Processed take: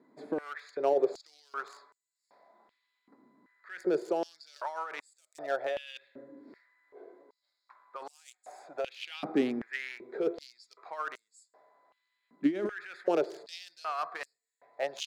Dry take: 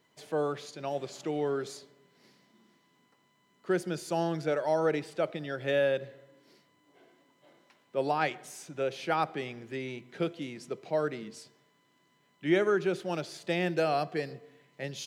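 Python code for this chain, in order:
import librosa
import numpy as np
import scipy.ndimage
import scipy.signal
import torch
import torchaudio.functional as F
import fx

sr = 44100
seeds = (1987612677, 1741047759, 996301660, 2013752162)

y = fx.wiener(x, sr, points=15)
y = fx.over_compress(y, sr, threshold_db=-33.0, ratio=-1.0)
y = fx.filter_held_highpass(y, sr, hz=2.6, low_hz=260.0, high_hz=7700.0)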